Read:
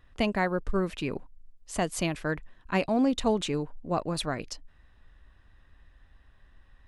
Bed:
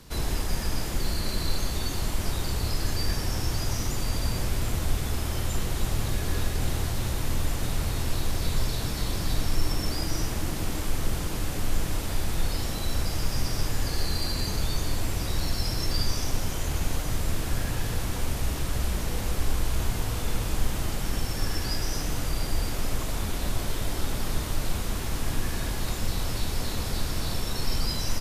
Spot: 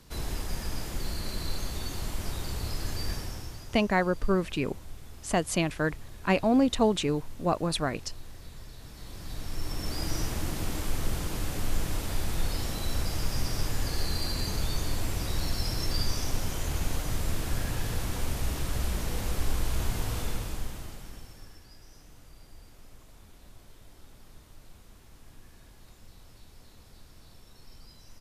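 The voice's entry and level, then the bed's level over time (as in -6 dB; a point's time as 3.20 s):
3.55 s, +2.0 dB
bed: 3.13 s -5.5 dB
3.80 s -19 dB
8.77 s -19 dB
10.07 s -2.5 dB
20.20 s -2.5 dB
21.66 s -24 dB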